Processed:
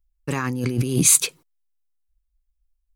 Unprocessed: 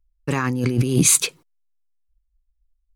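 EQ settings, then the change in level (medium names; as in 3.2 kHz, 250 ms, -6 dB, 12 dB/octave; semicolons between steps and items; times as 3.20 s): treble shelf 7.9 kHz +7 dB; -3.0 dB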